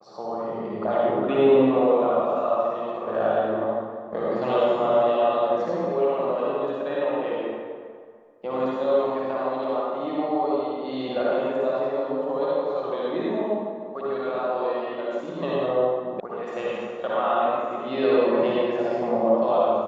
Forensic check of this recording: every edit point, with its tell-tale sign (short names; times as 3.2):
16.2 sound cut off